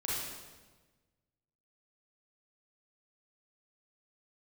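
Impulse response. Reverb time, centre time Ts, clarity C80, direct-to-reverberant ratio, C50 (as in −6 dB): 1.3 s, 96 ms, 1.0 dB, −7.0 dB, −2.5 dB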